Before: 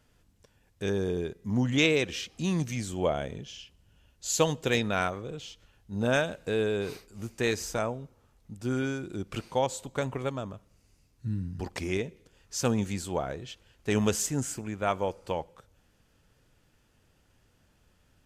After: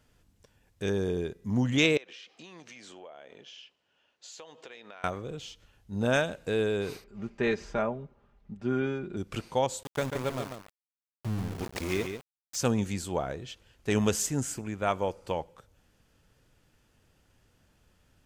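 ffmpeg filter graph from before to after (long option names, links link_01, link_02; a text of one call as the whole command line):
ffmpeg -i in.wav -filter_complex "[0:a]asettb=1/sr,asplit=3[link_01][link_02][link_03];[link_01]atrim=end=1.974[link_04];[link_02]atrim=start=1.97:end=5.04,asetpts=PTS-STARTPTS,afade=type=in:duration=0.004:curve=qsin,afade=type=out:start_time=3.066:duration=0.004:curve=qsin,highpass=490,lowpass=4200,acompressor=threshold=-44dB:ratio=8:attack=3.2:release=140:knee=1:detection=peak[link_05];[link_03]atrim=start=5.036[link_06];[link_04][link_05]acrossfade=duration=0.004:curve1=hsin:curve2=qsin[link_07];[link_07][link_06]acrossfade=duration=0.004:curve1=qsin:curve2=hsin,asettb=1/sr,asplit=3[link_08][link_09][link_10];[link_08]atrim=end=7.044[link_11];[link_09]atrim=start=7.04:end=9.17,asetpts=PTS-STARTPTS,afade=type=in:duration=0.004:curve=qsin,afade=type=out:start_time=2.126:duration=0.004:curve=qsin,lowpass=2500,aecho=1:1:5:0.56,atrim=end_sample=93933[link_12];[link_10]atrim=start=9.166[link_13];[link_11][link_12]acrossfade=duration=0.004:curve1=hsin:curve2=qsin[link_14];[link_14][link_13]acrossfade=duration=0.004:curve1=qsin:curve2=hsin,asettb=1/sr,asplit=3[link_15][link_16][link_17];[link_15]atrim=end=9.834[link_18];[link_16]atrim=start=9.83:end=12.56,asetpts=PTS-STARTPTS,afade=type=in:duration=0.004:curve=qsin,afade=type=out:start_time=2.726:duration=0.004:curve=qsin,aeval=exprs='val(0)*gte(abs(val(0)),0.0188)':channel_layout=same,aecho=1:1:142:0.422,atrim=end_sample=120393[link_19];[link_17]atrim=start=12.556[link_20];[link_18][link_19]acrossfade=duration=0.004:curve1=hsin:curve2=qsin[link_21];[link_21][link_20]acrossfade=duration=0.004:curve1=qsin:curve2=hsin" out.wav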